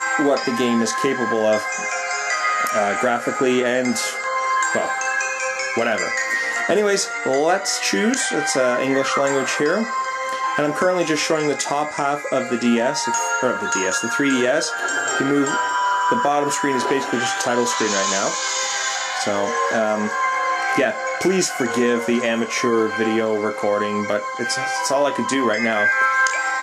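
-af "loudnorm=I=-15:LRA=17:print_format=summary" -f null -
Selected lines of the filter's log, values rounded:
Input Integrated:    -19.7 LUFS
Input True Peak:      -3.3 dBTP
Input LRA:             1.1 LU
Input Threshold:     -29.7 LUFS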